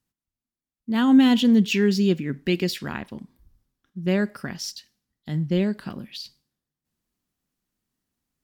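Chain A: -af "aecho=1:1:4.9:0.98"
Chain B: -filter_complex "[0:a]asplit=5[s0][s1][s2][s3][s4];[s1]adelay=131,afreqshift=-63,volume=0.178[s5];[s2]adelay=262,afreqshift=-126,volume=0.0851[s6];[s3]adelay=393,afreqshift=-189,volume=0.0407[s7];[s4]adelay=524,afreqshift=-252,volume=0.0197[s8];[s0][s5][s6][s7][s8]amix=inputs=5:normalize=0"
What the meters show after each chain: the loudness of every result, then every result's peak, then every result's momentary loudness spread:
-18.0 LUFS, -22.0 LUFS; -4.0 dBFS, -7.5 dBFS; 21 LU, 21 LU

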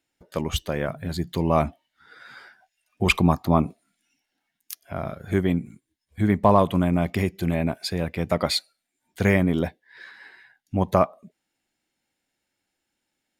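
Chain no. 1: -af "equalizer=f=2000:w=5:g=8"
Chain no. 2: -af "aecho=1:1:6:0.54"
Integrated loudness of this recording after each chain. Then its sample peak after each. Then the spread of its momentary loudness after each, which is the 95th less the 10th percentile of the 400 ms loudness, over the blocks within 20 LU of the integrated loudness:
-23.5 LUFS, -22.5 LUFS; -2.0 dBFS, -3.5 dBFS; 17 LU, 12 LU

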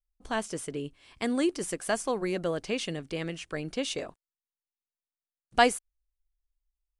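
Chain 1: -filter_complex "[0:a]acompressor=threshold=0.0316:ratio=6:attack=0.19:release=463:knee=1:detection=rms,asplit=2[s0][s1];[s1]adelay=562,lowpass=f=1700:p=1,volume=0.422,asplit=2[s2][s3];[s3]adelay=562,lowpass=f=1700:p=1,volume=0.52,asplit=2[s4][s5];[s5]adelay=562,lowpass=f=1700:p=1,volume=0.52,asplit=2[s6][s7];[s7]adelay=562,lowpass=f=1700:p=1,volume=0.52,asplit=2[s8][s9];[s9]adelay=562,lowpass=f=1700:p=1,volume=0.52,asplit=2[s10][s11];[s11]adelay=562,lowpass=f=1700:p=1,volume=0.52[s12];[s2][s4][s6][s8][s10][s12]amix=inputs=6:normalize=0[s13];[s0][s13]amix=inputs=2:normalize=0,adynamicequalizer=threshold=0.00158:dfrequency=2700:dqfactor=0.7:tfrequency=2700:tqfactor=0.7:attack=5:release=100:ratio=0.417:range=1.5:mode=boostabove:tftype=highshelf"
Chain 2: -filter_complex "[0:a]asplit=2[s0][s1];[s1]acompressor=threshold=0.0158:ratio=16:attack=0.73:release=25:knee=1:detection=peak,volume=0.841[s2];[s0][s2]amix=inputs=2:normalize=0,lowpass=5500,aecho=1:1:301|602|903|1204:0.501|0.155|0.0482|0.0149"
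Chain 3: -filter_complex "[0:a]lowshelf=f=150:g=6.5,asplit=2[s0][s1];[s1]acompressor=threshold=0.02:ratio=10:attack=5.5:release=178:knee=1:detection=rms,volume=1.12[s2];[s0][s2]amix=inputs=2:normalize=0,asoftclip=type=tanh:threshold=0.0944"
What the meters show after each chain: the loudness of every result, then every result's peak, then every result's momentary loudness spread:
-39.5 LUFS, -29.0 LUFS, -30.5 LUFS; -25.0 dBFS, -7.0 dBFS, -20.5 dBFS; 17 LU, 15 LU, 6 LU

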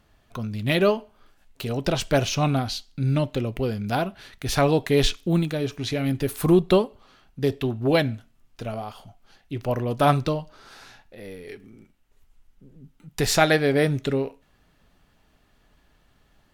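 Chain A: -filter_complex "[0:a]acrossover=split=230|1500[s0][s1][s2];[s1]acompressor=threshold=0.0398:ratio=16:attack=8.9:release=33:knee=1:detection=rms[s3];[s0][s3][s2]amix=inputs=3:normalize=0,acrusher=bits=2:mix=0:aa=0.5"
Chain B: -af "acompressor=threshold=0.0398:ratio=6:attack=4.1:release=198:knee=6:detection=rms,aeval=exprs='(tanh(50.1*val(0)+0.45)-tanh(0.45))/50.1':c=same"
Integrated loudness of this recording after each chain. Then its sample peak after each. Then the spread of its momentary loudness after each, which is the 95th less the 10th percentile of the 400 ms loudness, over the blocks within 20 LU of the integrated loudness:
-31.0 LUFS, -40.0 LUFS; -9.5 dBFS, -31.0 dBFS; 16 LU, 12 LU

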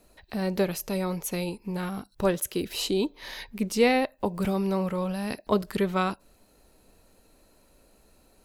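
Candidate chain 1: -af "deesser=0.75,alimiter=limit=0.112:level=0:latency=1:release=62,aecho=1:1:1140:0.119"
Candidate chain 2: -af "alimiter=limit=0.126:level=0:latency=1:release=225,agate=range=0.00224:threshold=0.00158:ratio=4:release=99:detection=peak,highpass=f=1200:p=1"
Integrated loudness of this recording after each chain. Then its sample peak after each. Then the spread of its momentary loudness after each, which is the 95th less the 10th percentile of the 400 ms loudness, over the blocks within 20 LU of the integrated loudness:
-31.0 LUFS, -36.5 LUFS; -18.0 dBFS, -17.5 dBFS; 19 LU, 9 LU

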